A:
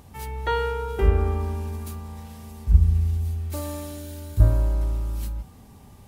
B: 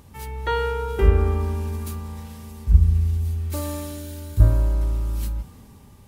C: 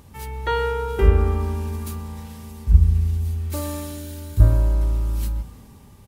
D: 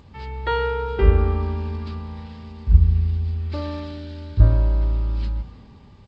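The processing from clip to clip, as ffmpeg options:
-af "equalizer=f=720:w=5.9:g=-9,dynaudnorm=f=130:g=9:m=4dB"
-filter_complex "[0:a]asplit=2[a][b];[b]adelay=128.3,volume=-19dB,highshelf=f=4k:g=-2.89[c];[a][c]amix=inputs=2:normalize=0,volume=1dB"
-af "aresample=11025,aresample=44100" -ar 16000 -c:a g722

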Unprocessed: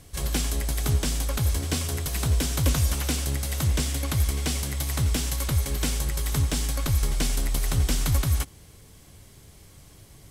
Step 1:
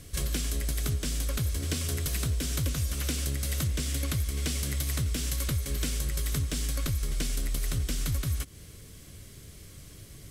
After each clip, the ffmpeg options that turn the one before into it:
-af "acompressor=threshold=-29dB:ratio=6,equalizer=f=850:t=o:w=0.57:g=-12,volume=2.5dB"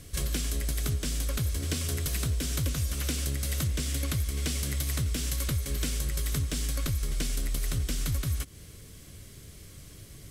-af anull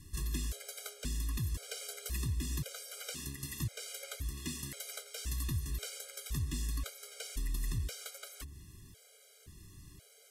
-af "bandreject=f=69.55:t=h:w=4,bandreject=f=139.1:t=h:w=4,bandreject=f=208.65:t=h:w=4,bandreject=f=278.2:t=h:w=4,bandreject=f=347.75:t=h:w=4,bandreject=f=417.3:t=h:w=4,bandreject=f=486.85:t=h:w=4,bandreject=f=556.4:t=h:w=4,bandreject=f=625.95:t=h:w=4,bandreject=f=695.5:t=h:w=4,bandreject=f=765.05:t=h:w=4,bandreject=f=834.6:t=h:w=4,bandreject=f=904.15:t=h:w=4,bandreject=f=973.7:t=h:w=4,afftfilt=real='re*gt(sin(2*PI*0.95*pts/sr)*(1-2*mod(floor(b*sr/1024/410),2)),0)':imag='im*gt(sin(2*PI*0.95*pts/sr)*(1-2*mod(floor(b*sr/1024/410),2)),0)':win_size=1024:overlap=0.75,volume=-5dB"

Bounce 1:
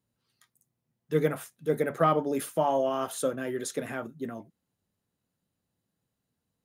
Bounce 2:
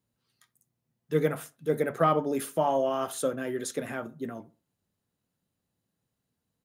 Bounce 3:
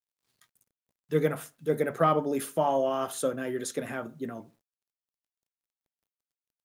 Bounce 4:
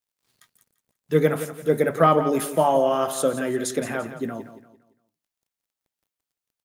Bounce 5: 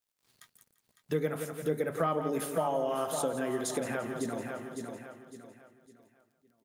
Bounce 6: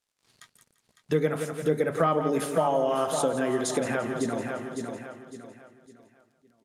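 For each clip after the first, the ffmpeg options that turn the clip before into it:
-filter_complex "[0:a]asplit=2[a][b];[b]adelay=66,lowpass=f=1.5k:p=1,volume=-18dB,asplit=2[c][d];[d]adelay=66,lowpass=f=1.5k:p=1,volume=0.33,asplit=2[e][f];[f]adelay=66,lowpass=f=1.5k:p=1,volume=0.33[g];[a][c][e][g]amix=inputs=4:normalize=0"
-af "acrusher=bits=11:mix=0:aa=0.000001"
-af "aecho=1:1:171|342|513|684:0.251|0.0879|0.0308|0.0108,volume=6.5dB"
-af "aecho=1:1:555|1110|1665|2220:0.282|0.093|0.0307|0.0101,acompressor=threshold=-33dB:ratio=2.5"
-af "lowpass=9.3k,volume=6dB"

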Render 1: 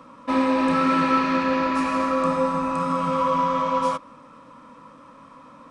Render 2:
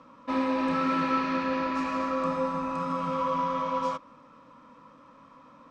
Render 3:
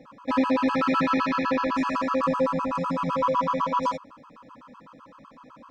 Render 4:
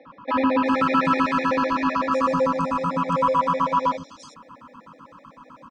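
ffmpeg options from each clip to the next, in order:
-af "lowpass=f=6.9k:w=0.5412,lowpass=f=6.9k:w=1.3066,volume=-6.5dB"
-af "afftfilt=real='re*gt(sin(2*PI*7.9*pts/sr)*(1-2*mod(floor(b*sr/1024/840),2)),0)':imag='im*gt(sin(2*PI*7.9*pts/sr)*(1-2*mod(floor(b*sr/1024/840),2)),0)':win_size=1024:overlap=0.75,volume=7dB"
-filter_complex "[0:a]acrossover=split=320|4200[a][b][c];[a]adelay=60[d];[c]adelay=370[e];[d][b][e]amix=inputs=3:normalize=0,volume=4dB"

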